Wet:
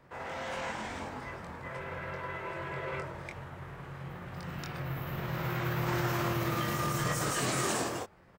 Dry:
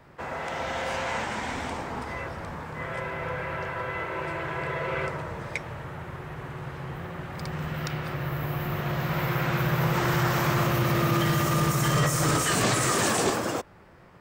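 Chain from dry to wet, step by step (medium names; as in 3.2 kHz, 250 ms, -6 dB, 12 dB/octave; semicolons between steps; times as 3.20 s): granular stretch 0.59×, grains 107 ms; doubling 23 ms -4.5 dB; trim -7 dB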